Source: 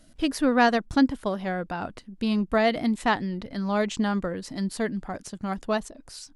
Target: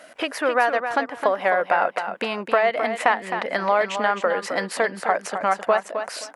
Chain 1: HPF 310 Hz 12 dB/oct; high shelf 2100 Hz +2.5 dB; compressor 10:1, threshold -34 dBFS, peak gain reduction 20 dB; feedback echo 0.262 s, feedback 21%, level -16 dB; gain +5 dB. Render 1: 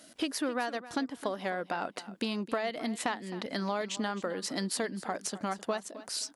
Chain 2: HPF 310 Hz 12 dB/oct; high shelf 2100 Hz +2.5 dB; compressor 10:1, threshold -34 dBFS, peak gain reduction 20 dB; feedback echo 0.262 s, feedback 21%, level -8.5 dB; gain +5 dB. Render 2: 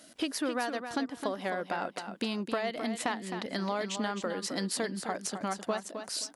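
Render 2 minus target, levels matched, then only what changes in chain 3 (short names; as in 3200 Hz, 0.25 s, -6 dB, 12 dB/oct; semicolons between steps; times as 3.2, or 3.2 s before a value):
1000 Hz band -3.0 dB
add after compressor: band shelf 1100 Hz +14.5 dB 2.9 oct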